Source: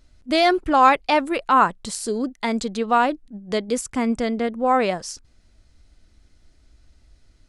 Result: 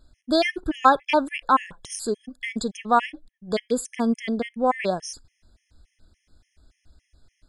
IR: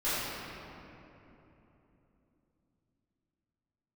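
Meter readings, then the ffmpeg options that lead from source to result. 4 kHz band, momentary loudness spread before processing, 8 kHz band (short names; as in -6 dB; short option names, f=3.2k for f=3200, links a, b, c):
-3.0 dB, 12 LU, -3.0 dB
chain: -filter_complex "[0:a]asplit=2[a][b];[1:a]atrim=start_sample=2205,atrim=end_sample=3969,lowshelf=f=470:g=-7.5[c];[b][c]afir=irnorm=-1:irlink=0,volume=-32dB[d];[a][d]amix=inputs=2:normalize=0,afftfilt=real='re*gt(sin(2*PI*3.5*pts/sr)*(1-2*mod(floor(b*sr/1024/1700),2)),0)':imag='im*gt(sin(2*PI*3.5*pts/sr)*(1-2*mod(floor(b*sr/1024/1700),2)),0)':win_size=1024:overlap=0.75"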